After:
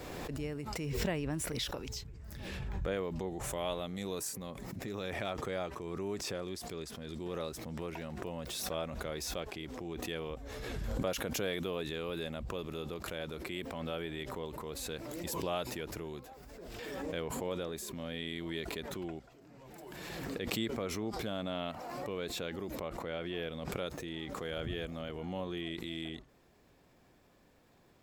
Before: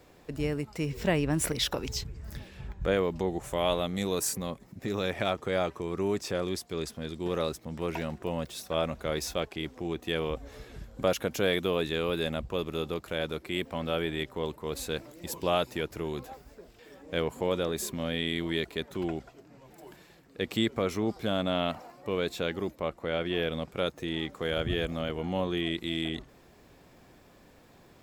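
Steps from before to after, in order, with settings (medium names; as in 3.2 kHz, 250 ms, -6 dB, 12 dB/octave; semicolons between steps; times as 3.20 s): swell ahead of each attack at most 22 dB/s; trim -9 dB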